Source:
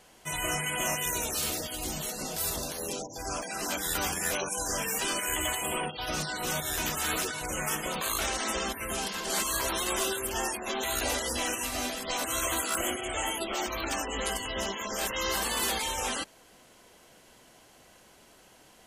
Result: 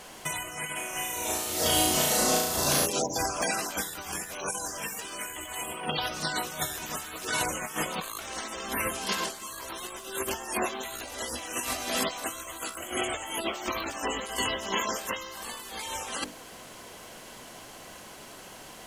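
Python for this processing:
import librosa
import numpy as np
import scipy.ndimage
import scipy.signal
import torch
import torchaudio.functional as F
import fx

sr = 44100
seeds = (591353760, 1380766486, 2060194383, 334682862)

y = scipy.signal.sosfilt(scipy.signal.butter(2, 76.0, 'highpass', fs=sr, output='sos'), x)
y = fx.peak_eq(y, sr, hz=1100.0, db=3.5, octaves=0.23)
y = fx.hum_notches(y, sr, base_hz=50, count=10)
y = fx.over_compress(y, sr, threshold_db=-37.0, ratio=-0.5)
y = fx.dmg_noise_colour(y, sr, seeds[0], colour='pink', level_db=-65.0)
y = fx.room_flutter(y, sr, wall_m=6.0, rt60_s=0.95, at=(0.75, 2.85), fade=0.02)
y = y * librosa.db_to_amplitude(5.0)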